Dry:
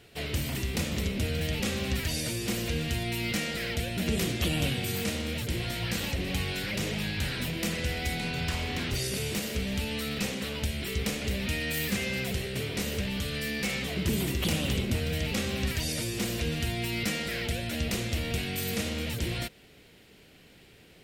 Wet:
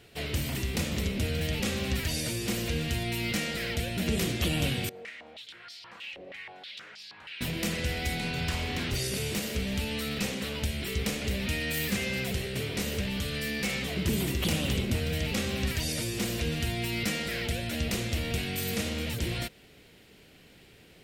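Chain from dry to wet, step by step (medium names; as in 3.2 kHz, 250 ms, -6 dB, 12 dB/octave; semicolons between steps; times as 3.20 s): 4.89–7.41 s: step-sequenced band-pass 6.3 Hz 580–4900 Hz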